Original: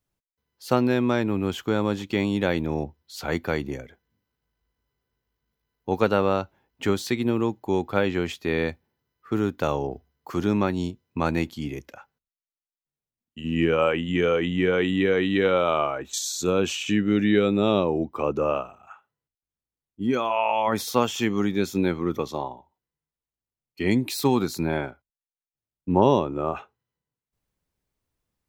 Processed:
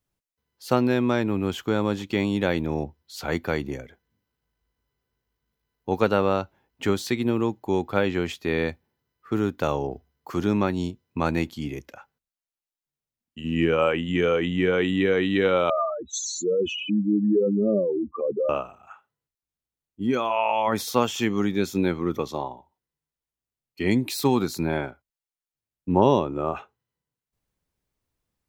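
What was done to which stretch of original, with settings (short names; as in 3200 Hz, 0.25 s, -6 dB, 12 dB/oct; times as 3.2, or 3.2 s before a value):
15.7–18.49 spectral contrast raised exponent 3.7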